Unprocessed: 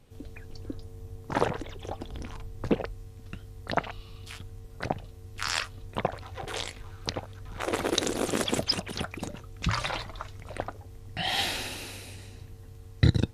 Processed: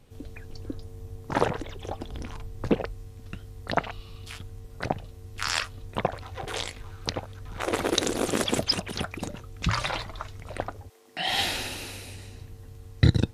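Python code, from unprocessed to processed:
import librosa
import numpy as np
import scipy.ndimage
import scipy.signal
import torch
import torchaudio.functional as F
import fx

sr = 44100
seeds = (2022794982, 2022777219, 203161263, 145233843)

y = fx.highpass(x, sr, hz=fx.line((10.88, 490.0), (11.28, 170.0)), slope=24, at=(10.88, 11.28), fade=0.02)
y = y * librosa.db_to_amplitude(2.0)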